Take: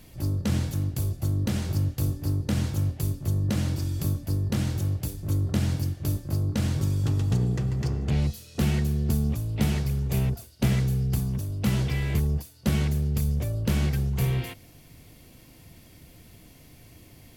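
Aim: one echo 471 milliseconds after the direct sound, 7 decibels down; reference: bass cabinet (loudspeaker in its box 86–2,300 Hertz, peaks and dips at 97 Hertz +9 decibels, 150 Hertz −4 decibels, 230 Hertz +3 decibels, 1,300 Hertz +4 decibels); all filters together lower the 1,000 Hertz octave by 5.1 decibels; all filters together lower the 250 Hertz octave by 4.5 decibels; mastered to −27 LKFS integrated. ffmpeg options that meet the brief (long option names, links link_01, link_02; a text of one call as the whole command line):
ffmpeg -i in.wav -af "highpass=frequency=86:width=0.5412,highpass=frequency=86:width=1.3066,equalizer=frequency=97:width_type=q:width=4:gain=9,equalizer=frequency=150:width_type=q:width=4:gain=-4,equalizer=frequency=230:width_type=q:width=4:gain=3,equalizer=frequency=1300:width_type=q:width=4:gain=4,lowpass=frequency=2300:width=0.5412,lowpass=frequency=2300:width=1.3066,equalizer=frequency=250:width_type=o:gain=-7.5,equalizer=frequency=1000:width_type=o:gain=-8.5,aecho=1:1:471:0.447,volume=-1.5dB" out.wav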